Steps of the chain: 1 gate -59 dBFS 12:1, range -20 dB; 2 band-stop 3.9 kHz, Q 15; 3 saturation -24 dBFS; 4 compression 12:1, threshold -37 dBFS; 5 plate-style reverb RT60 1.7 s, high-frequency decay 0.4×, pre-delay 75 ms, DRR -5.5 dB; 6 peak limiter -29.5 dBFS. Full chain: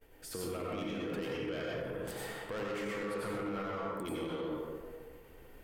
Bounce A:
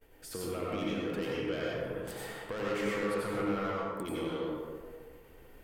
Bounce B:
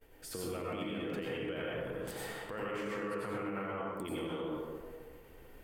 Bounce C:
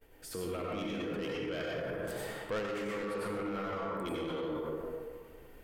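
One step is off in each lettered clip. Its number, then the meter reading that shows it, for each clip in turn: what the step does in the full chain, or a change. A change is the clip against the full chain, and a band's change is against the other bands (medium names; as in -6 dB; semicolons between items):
6, mean gain reduction 2.0 dB; 3, distortion -8 dB; 4, mean gain reduction 5.0 dB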